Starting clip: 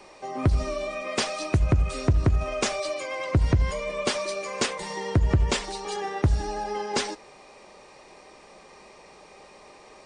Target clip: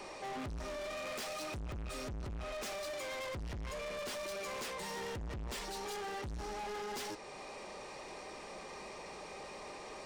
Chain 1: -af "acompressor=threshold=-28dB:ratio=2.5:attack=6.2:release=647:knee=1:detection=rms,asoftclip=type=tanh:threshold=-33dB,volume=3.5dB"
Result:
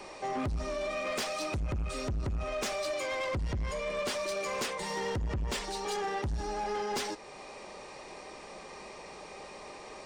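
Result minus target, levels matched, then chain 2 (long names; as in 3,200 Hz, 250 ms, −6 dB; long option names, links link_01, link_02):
soft clipping: distortion −5 dB
-af "acompressor=threshold=-28dB:ratio=2.5:attack=6.2:release=647:knee=1:detection=rms,asoftclip=type=tanh:threshold=-43.5dB,volume=3.5dB"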